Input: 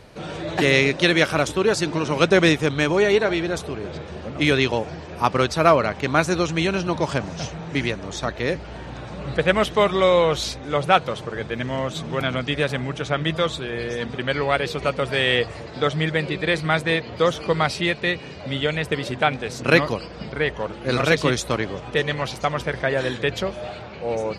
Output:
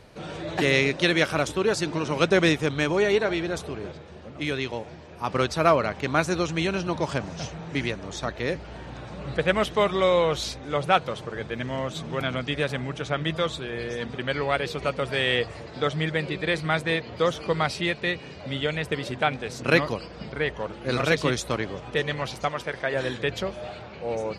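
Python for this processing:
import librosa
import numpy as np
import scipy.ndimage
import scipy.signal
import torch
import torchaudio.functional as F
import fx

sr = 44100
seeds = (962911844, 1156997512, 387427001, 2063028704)

y = fx.comb_fb(x, sr, f0_hz=120.0, decay_s=1.7, harmonics='all', damping=0.0, mix_pct=50, at=(3.91, 5.27), fade=0.02)
y = fx.low_shelf(y, sr, hz=200.0, db=-10.5, at=(22.49, 22.94))
y = y * librosa.db_to_amplitude(-4.0)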